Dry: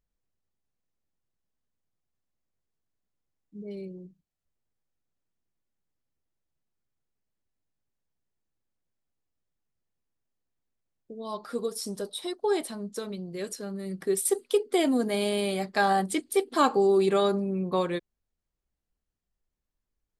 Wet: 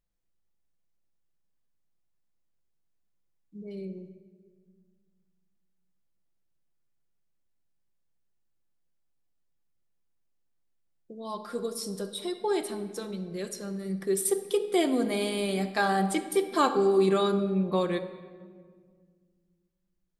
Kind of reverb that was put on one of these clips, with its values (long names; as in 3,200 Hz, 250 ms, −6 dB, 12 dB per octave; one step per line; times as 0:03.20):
rectangular room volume 2,400 cubic metres, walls mixed, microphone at 0.84 metres
level −1.5 dB